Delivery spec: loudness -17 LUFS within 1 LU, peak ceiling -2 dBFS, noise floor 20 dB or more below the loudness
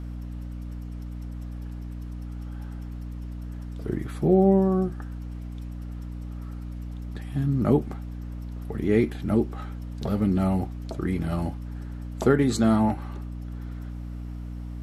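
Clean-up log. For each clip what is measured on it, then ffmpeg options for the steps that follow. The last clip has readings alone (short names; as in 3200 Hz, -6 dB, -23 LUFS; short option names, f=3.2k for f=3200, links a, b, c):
hum 60 Hz; harmonics up to 300 Hz; hum level -32 dBFS; loudness -28.0 LUFS; peak -6.5 dBFS; loudness target -17.0 LUFS
-> -af "bandreject=f=60:t=h:w=4,bandreject=f=120:t=h:w=4,bandreject=f=180:t=h:w=4,bandreject=f=240:t=h:w=4,bandreject=f=300:t=h:w=4"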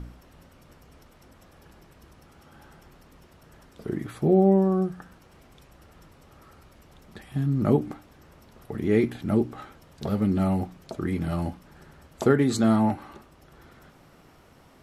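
hum none; loudness -25.0 LUFS; peak -6.5 dBFS; loudness target -17.0 LUFS
-> -af "volume=8dB,alimiter=limit=-2dB:level=0:latency=1"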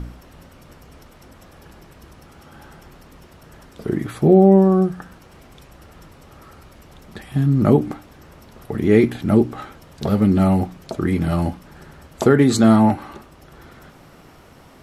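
loudness -17.5 LUFS; peak -2.0 dBFS; noise floor -47 dBFS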